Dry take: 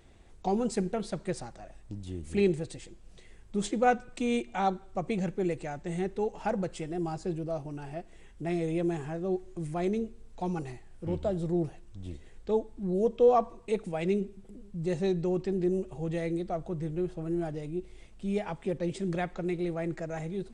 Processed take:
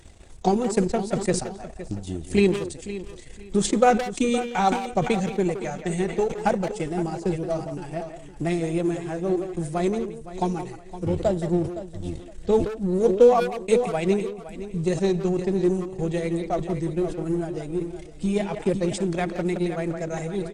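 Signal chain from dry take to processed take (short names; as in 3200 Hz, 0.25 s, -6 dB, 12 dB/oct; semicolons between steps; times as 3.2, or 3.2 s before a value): bin magnitudes rounded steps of 15 dB; transient shaper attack +7 dB, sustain -12 dB; speakerphone echo 0.17 s, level -10 dB; in parallel at -10.5 dB: overloaded stage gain 32.5 dB; on the sum: bell 8300 Hz +8 dB 1.7 oct; on a send: feedback echo 0.514 s, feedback 24%, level -14 dB; on the sum: sustainer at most 96 dB/s; gain +3 dB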